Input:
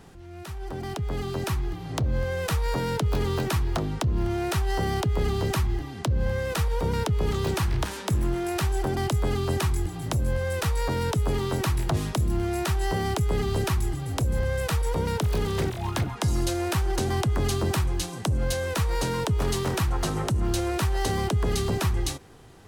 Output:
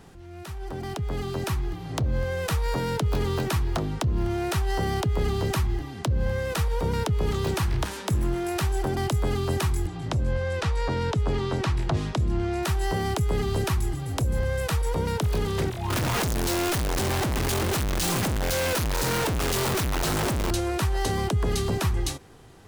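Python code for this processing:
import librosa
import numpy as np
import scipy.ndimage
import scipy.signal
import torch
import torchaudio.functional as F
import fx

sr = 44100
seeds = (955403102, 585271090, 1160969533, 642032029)

y = fx.lowpass(x, sr, hz=5500.0, slope=12, at=(9.87, 12.63))
y = fx.clip_1bit(y, sr, at=(15.9, 20.51))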